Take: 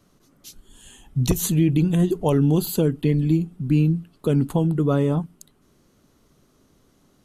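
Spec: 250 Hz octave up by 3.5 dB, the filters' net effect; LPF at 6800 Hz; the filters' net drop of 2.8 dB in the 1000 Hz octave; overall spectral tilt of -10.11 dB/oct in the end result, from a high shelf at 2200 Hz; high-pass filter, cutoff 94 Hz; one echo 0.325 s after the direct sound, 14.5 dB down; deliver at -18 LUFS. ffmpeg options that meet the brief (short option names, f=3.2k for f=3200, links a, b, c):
-af "highpass=94,lowpass=6.8k,equalizer=f=250:t=o:g=6,equalizer=f=1k:t=o:g=-3,highshelf=f=2.2k:g=-5.5,aecho=1:1:325:0.188,volume=1dB"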